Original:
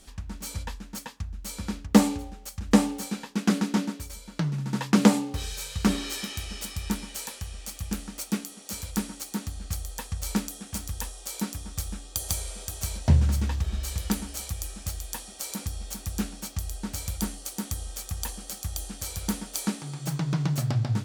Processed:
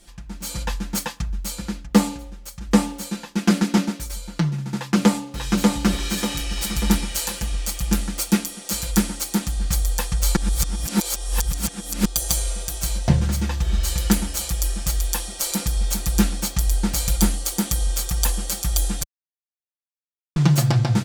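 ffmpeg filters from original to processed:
ffmpeg -i in.wav -filter_complex "[0:a]asplit=2[link_01][link_02];[link_02]afade=type=in:start_time=4.76:duration=0.01,afade=type=out:start_time=5.82:duration=0.01,aecho=0:1:590|1180|1770|2360|2950:0.749894|0.262463|0.091862|0.0321517|0.0112531[link_03];[link_01][link_03]amix=inputs=2:normalize=0,asplit=5[link_04][link_05][link_06][link_07][link_08];[link_04]atrim=end=10.362[link_09];[link_05]atrim=start=10.358:end=12.052,asetpts=PTS-STARTPTS,areverse[link_10];[link_06]atrim=start=12.048:end=19.03,asetpts=PTS-STARTPTS,afade=type=out:start_time=6.978:duration=0.004:curve=hsin[link_11];[link_07]atrim=start=19.03:end=20.36,asetpts=PTS-STARTPTS,volume=0[link_12];[link_08]atrim=start=20.36,asetpts=PTS-STARTPTS,afade=type=in:duration=0.004:curve=hsin[link_13];[link_09][link_10]acrossfade=duration=0.004:curve1=hsin:curve2=hsin[link_14];[link_11][link_12][link_13]concat=n=3:v=0:a=1[link_15];[link_14][link_15]acrossfade=duration=0.004:curve1=hsin:curve2=hsin,aecho=1:1:5.8:0.78,dynaudnorm=framelen=130:gausssize=9:maxgain=11.5dB,asubboost=boost=3:cutoff=57,volume=-1dB" out.wav

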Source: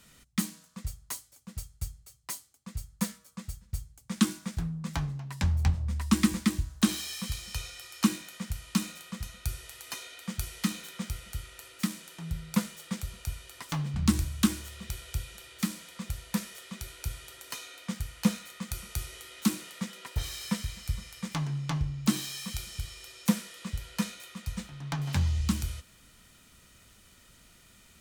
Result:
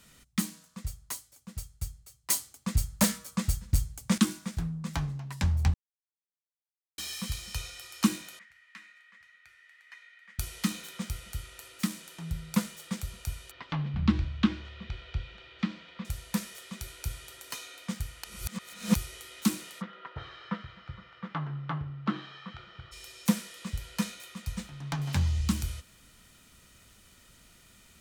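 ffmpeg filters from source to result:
ffmpeg -i in.wav -filter_complex "[0:a]asettb=1/sr,asplit=3[link_01][link_02][link_03];[link_01]atrim=end=2.304[link_04];[link_02]atrim=start=2.3:end=4.18,asetpts=PTS-STARTPTS,afade=type=in:duration=0.004:curve=qsin,afade=type=out:start_time=1.876:duration=0.004:curve=qsin,aeval=exprs='0.158*sin(PI/2*2.51*val(0)/0.158)':channel_layout=same[link_05];[link_03]atrim=start=4.176[link_06];[link_04][link_05]acrossfade=duration=0.004:curve1=hsin:curve2=qsin[link_07];[link_07][link_06]acrossfade=duration=0.004:curve1=qsin:curve2=hsin,asettb=1/sr,asplit=3[link_08][link_09][link_10];[link_08]atrim=end=8.394[link_11];[link_09]atrim=start=8.39:end=10.39,asetpts=PTS-STARTPTS,afade=type=in:duration=0.004:curve=qsin,afade=type=out:start_time=1.996:duration=0.004:curve=qsin,bandpass=frequency=1900:width_type=q:width=6[link_12];[link_10]atrim=start=10.386[link_13];[link_11][link_12]acrossfade=duration=0.004:curve1=hsin:curve2=qsin[link_14];[link_14][link_13]acrossfade=duration=0.004:curve1=qsin:curve2=hsin,asettb=1/sr,asplit=3[link_15][link_16][link_17];[link_15]atrim=end=13.514[link_18];[link_16]atrim=start=13.51:end=16.05,asetpts=PTS-STARTPTS,afade=type=in:duration=0.004:curve=qsin,afade=type=out:start_time=2.536:duration=0.004:curve=qsin,lowpass=frequency=3700:width=0.5412,lowpass=frequency=3700:width=1.3066[link_19];[link_17]atrim=start=16.046[link_20];[link_18][link_19]acrossfade=duration=0.004:curve1=hsin:curve2=qsin[link_21];[link_21][link_20]acrossfade=duration=0.004:curve1=qsin:curve2=hsin,asplit=3[link_22][link_23][link_24];[link_22]afade=type=out:start_time=19.8:duration=0.02[link_25];[link_23]highpass=150,equalizer=frequency=240:width_type=q:width=4:gain=-8,equalizer=frequency=1300:width_type=q:width=4:gain=8,equalizer=frequency=2400:width_type=q:width=4:gain=-8,lowpass=frequency=2800:width=0.5412,lowpass=frequency=2800:width=1.3066,afade=type=in:start_time=19.8:duration=0.02,afade=type=out:start_time=22.91:duration=0.02[link_26];[link_24]afade=type=in:start_time=22.91:duration=0.02[link_27];[link_25][link_26][link_27]amix=inputs=3:normalize=0,asplit=5[link_28][link_29][link_30][link_31][link_32];[link_28]atrim=end=5.74,asetpts=PTS-STARTPTS,afade=type=out:start_time=5.736:duration=0.004:curve=hsin[link_33];[link_29]atrim=start=5.74:end=6.98,asetpts=PTS-STARTPTS,volume=0[link_34];[link_30]atrim=start=6.98:end=18.242,asetpts=PTS-STARTPTS,afade=type=in:duration=0.004:curve=hsin[link_35];[link_31]atrim=start=18.238:end=18.952,asetpts=PTS-STARTPTS,areverse[link_36];[link_32]atrim=start=18.948[link_37];[link_33][link_34][link_35]concat=n=3:v=0:a=1[link_38];[link_38][link_36]acrossfade=duration=0.004:curve1=hsin:curve2=hsin[link_39];[link_39][link_37]acrossfade=duration=0.004:curve1=hsin:curve2=hsin" out.wav

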